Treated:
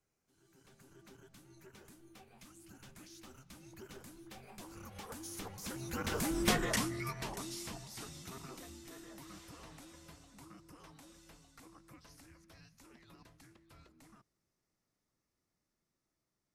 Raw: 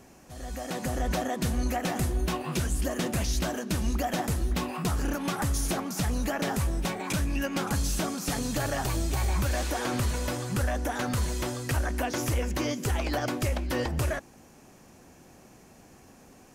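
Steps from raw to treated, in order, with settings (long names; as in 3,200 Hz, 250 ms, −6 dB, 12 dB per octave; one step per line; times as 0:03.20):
source passing by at 0:06.52, 19 m/s, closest 3.2 metres
low-shelf EQ 310 Hz −10.5 dB
frequency shifter −390 Hz
level +4.5 dB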